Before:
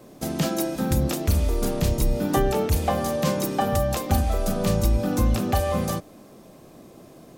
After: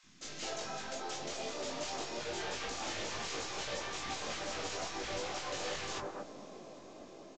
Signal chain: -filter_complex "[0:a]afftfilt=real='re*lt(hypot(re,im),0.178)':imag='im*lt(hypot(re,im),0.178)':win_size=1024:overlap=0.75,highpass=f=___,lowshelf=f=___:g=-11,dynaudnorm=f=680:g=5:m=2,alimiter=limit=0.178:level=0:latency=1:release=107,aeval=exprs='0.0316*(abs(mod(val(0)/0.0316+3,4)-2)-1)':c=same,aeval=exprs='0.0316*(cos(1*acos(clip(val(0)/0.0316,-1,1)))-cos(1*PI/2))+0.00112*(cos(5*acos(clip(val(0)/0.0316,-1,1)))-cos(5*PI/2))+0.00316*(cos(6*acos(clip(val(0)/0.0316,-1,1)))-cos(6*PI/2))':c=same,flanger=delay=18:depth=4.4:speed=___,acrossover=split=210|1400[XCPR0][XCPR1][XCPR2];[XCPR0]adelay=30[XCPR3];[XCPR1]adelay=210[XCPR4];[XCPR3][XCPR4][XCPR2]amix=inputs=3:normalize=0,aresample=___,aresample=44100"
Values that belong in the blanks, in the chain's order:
150, 220, 2.3, 16000